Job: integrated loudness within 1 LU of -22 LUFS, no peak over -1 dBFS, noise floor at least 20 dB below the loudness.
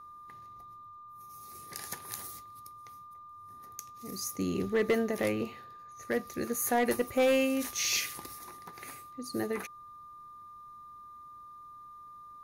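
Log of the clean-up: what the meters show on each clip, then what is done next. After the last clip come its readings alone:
clipped samples 0.3%; clipping level -20.5 dBFS; steady tone 1.2 kHz; tone level -47 dBFS; loudness -32.0 LUFS; peak level -20.5 dBFS; loudness target -22.0 LUFS
-> clip repair -20.5 dBFS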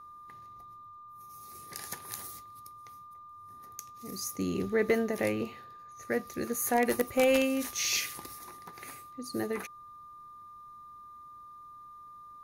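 clipped samples 0.0%; steady tone 1.2 kHz; tone level -47 dBFS
-> band-stop 1.2 kHz, Q 30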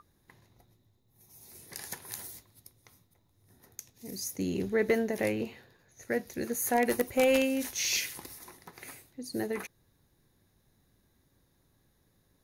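steady tone not found; loudness -31.0 LUFS; peak level -11.5 dBFS; loudness target -22.0 LUFS
-> trim +9 dB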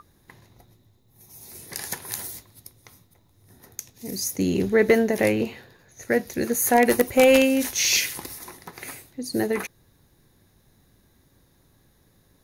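loudness -22.0 LUFS; peak level -2.5 dBFS; noise floor -62 dBFS

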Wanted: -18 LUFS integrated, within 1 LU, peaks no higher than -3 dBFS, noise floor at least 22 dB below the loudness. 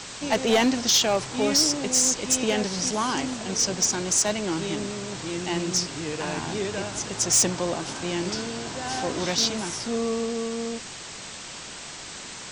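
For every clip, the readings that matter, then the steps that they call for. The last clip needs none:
clipped samples 0.2%; clipping level -14.5 dBFS; noise floor -39 dBFS; noise floor target -47 dBFS; loudness -24.5 LUFS; peak level -14.5 dBFS; loudness target -18.0 LUFS
-> clip repair -14.5 dBFS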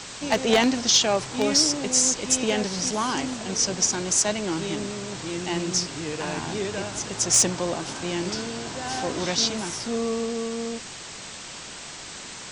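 clipped samples 0.0%; noise floor -39 dBFS; noise floor target -46 dBFS
-> noise reduction 7 dB, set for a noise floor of -39 dBFS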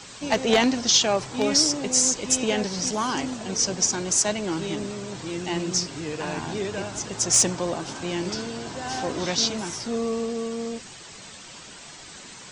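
noise floor -43 dBFS; noise floor target -46 dBFS
-> noise reduction 6 dB, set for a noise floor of -43 dBFS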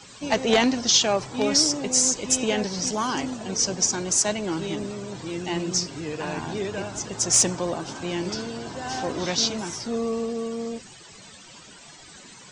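noise floor -47 dBFS; loudness -24.0 LUFS; peak level -5.5 dBFS; loudness target -18.0 LUFS
-> trim +6 dB; peak limiter -3 dBFS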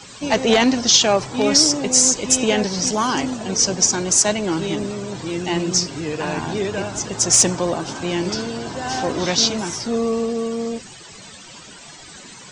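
loudness -18.5 LUFS; peak level -3.0 dBFS; noise floor -41 dBFS

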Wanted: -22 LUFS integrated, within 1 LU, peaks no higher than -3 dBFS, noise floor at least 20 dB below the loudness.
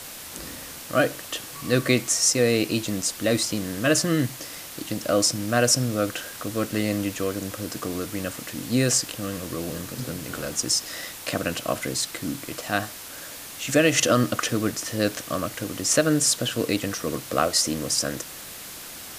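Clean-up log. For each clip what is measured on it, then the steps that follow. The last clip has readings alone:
dropouts 3; longest dropout 1.7 ms; noise floor -39 dBFS; noise floor target -45 dBFS; loudness -24.5 LUFS; peak level -4.5 dBFS; loudness target -22.0 LUFS
-> interpolate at 10.00/10.89/11.98 s, 1.7 ms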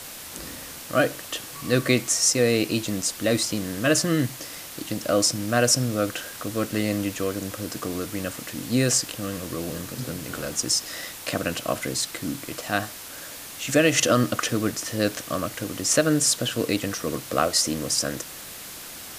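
dropouts 0; noise floor -39 dBFS; noise floor target -45 dBFS
-> noise reduction 6 dB, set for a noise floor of -39 dBFS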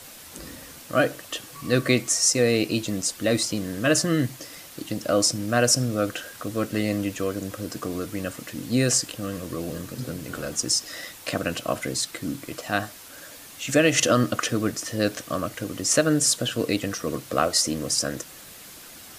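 noise floor -44 dBFS; noise floor target -45 dBFS
-> noise reduction 6 dB, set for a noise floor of -44 dBFS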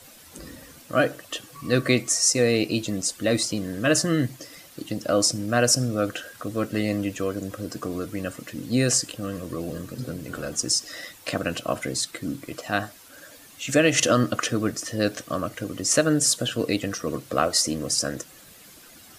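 noise floor -49 dBFS; loudness -24.5 LUFS; peak level -4.5 dBFS; loudness target -22.0 LUFS
-> trim +2.5 dB; peak limiter -3 dBFS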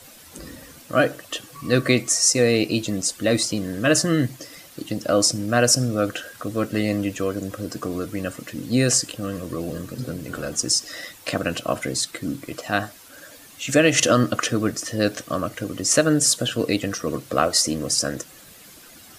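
loudness -22.0 LUFS; peak level -3.0 dBFS; noise floor -46 dBFS

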